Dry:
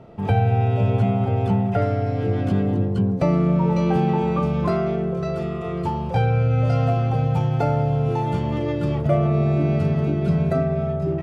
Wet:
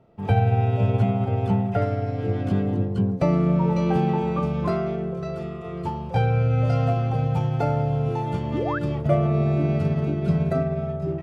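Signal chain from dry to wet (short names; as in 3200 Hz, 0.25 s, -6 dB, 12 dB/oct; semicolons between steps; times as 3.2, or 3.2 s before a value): painted sound rise, 8.53–8.79, 240–1800 Hz -25 dBFS; upward expander 1.5:1, over -40 dBFS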